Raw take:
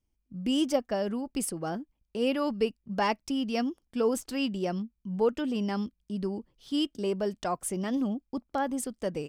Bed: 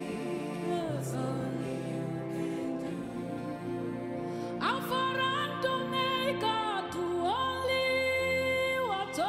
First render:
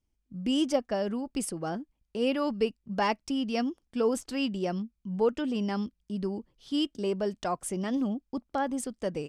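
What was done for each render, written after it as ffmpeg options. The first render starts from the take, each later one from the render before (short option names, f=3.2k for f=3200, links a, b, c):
-af "lowpass=10k"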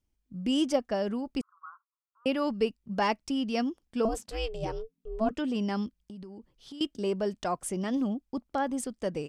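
-filter_complex "[0:a]asettb=1/sr,asplit=3[a][b][c];[a]atrim=end=1.414[d];[b]atrim=start=1.41:end=2.26,asetpts=PTS-STARTPTS,afade=t=in:d=0.004:c=qsin,afade=t=out:st=0.846:d=0.004:c=qsin,asuperpass=centerf=1200:order=8:qfactor=3[e];[c]atrim=start=2.256[f];[d][e]acrossfade=d=0.004:c1=hsin:c2=qsin[g];[g][f]acrossfade=d=0.004:c1=qsin:c2=hsin,asettb=1/sr,asplit=3[h][i][j];[h]atrim=end=4.054[k];[i]atrim=start=4.05:end=5.31,asetpts=PTS-STARTPTS,afade=t=in:d=0.004:c=qsin,afade=t=out:st=1.256:d=0.004:c=qsin,aeval=exprs='val(0)*sin(2*PI*220*n/s)':c=same[l];[j]atrim=start=5.306[m];[k][l]acrossfade=d=0.004:c1=hsin:c2=qsin[n];[n][m]acrossfade=d=0.004:c1=qsin:c2=hsin,asettb=1/sr,asplit=3[o][p][q];[o]atrim=end=5.964[r];[p]atrim=start=5.96:end=6.81,asetpts=PTS-STARTPTS,afade=t=in:d=0.004:c=qsin,afade=t=out:st=0.846:d=0.004:c=qsin,acompressor=threshold=-40dB:ratio=16:attack=3.2:release=140:knee=1:detection=peak[s];[q]atrim=start=6.806[t];[r][s]acrossfade=d=0.004:c1=hsin:c2=qsin[u];[u][t]acrossfade=d=0.004:c1=qsin:c2=hsin"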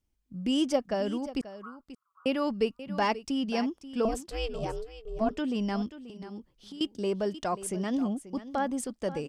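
-af "aecho=1:1:535:0.188"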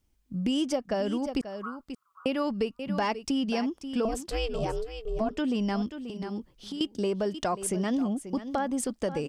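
-filter_complex "[0:a]asplit=2[a][b];[b]alimiter=limit=-22.5dB:level=0:latency=1:release=263,volume=2dB[c];[a][c]amix=inputs=2:normalize=0,acompressor=threshold=-27dB:ratio=2.5"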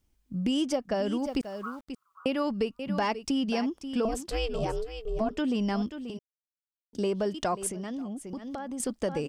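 -filter_complex "[0:a]asettb=1/sr,asplit=3[a][b][c];[a]atrim=end=1.194[d];[b]atrim=start=1.19:end=1.88,asetpts=PTS-STARTPTS,afade=t=in:d=0.004:c=qsin,afade=t=out:st=0.686:d=0.004:c=qsin,aeval=exprs='val(0)*gte(abs(val(0)),0.00237)':c=same[e];[c]atrim=start=1.876[f];[d][e]acrossfade=d=0.004:c1=hsin:c2=qsin[g];[g][f]acrossfade=d=0.004:c1=qsin:c2=hsin,asettb=1/sr,asplit=3[h][i][j];[h]atrim=end=7.684[k];[i]atrim=start=7.68:end=8.8,asetpts=PTS-STARTPTS,afade=t=in:d=0.004:c=qsin,afade=t=out:st=1.116:d=0.004:c=qsin,acompressor=threshold=-35dB:ratio=3:attack=3.2:release=140:knee=1:detection=peak[l];[j]atrim=start=8.796[m];[k][l]acrossfade=d=0.004:c1=hsin:c2=qsin[n];[n][m]acrossfade=d=0.004:c1=qsin:c2=hsin,asplit=3[o][p][q];[o]atrim=end=6.19,asetpts=PTS-STARTPTS,afade=t=out:st=6.186:d=0.004:c=hsin[r];[p]atrim=start=6.19:end=6.93,asetpts=PTS-STARTPTS,volume=0[s];[q]atrim=start=6.93,asetpts=PTS-STARTPTS,afade=t=in:d=0.004:c=hsin[t];[r][s][t]concat=n=3:v=0:a=1"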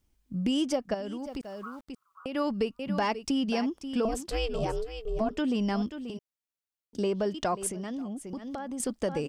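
-filter_complex "[0:a]asettb=1/sr,asplit=3[a][b][c];[a]atrim=end=0.944[d];[b]atrim=start=0.94:end=2.35,asetpts=PTS-STARTPTS,afade=t=in:d=0.004:c=qsin,afade=t=out:st=1.406:d=0.004:c=qsin,acompressor=threshold=-38dB:ratio=2:attack=3.2:release=140:knee=1:detection=peak[e];[c]atrim=start=2.346[f];[d][e]acrossfade=d=0.004:c1=hsin:c2=qsin[g];[g][f]acrossfade=d=0.004:c1=qsin:c2=hsin,asettb=1/sr,asplit=3[h][i][j];[h]atrim=end=7.024[k];[i]atrim=start=7.02:end=7.61,asetpts=PTS-STARTPTS,afade=t=in:d=0.004:c=qsin,afade=t=out:st=0.586:d=0.004:c=qsin,equalizer=f=10k:t=o:w=0.67:g=-7[l];[j]atrim=start=7.606[m];[k][l]acrossfade=d=0.004:c1=hsin:c2=qsin[n];[n][m]acrossfade=d=0.004:c1=qsin:c2=hsin"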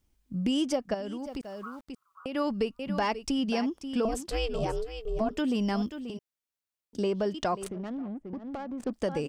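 -filter_complex "[0:a]asettb=1/sr,asplit=3[a][b][c];[a]atrim=end=2.434[d];[b]atrim=start=2.43:end=3.39,asetpts=PTS-STARTPTS,afade=t=in:d=0.004:c=qsin,afade=t=out:st=0.956:d=0.004:c=qsin,asubboost=boost=11.5:cutoff=58[e];[c]atrim=start=3.386[f];[d][e]acrossfade=d=0.004:c1=hsin:c2=qsin[g];[g][f]acrossfade=d=0.004:c1=qsin:c2=hsin,asettb=1/sr,asplit=3[h][i][j];[h]atrim=end=5.364[k];[i]atrim=start=5.36:end=6,asetpts=PTS-STARTPTS,afade=t=in:d=0.004:c=qsin,afade=t=out:st=0.636:d=0.004:c=qsin,highshelf=f=10k:g=10[l];[j]atrim=start=5.996[m];[k][l]acrossfade=d=0.004:c1=hsin:c2=qsin[n];[n][m]acrossfade=d=0.004:c1=qsin:c2=hsin,asettb=1/sr,asplit=3[o][p][q];[o]atrim=end=7.644[r];[p]atrim=start=7.64:end=8.93,asetpts=PTS-STARTPTS,afade=t=in:d=0.004:c=qsin,afade=t=out:st=1.286:d=0.004:c=qsin,adynamicsmooth=sensitivity=6:basefreq=530[s];[q]atrim=start=8.926[t];[r][s]acrossfade=d=0.004:c1=hsin:c2=qsin[u];[u][t]acrossfade=d=0.004:c1=qsin:c2=hsin"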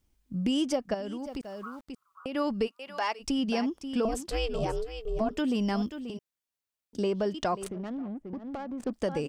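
-filter_complex "[0:a]asplit=3[a][b][c];[a]afade=t=out:st=2.66:d=0.02[d];[b]highpass=670,afade=t=in:st=2.66:d=0.02,afade=t=out:st=3.19:d=0.02[e];[c]afade=t=in:st=3.19:d=0.02[f];[d][e][f]amix=inputs=3:normalize=0"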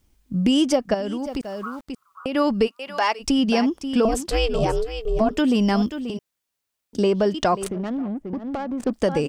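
-af "volume=9dB"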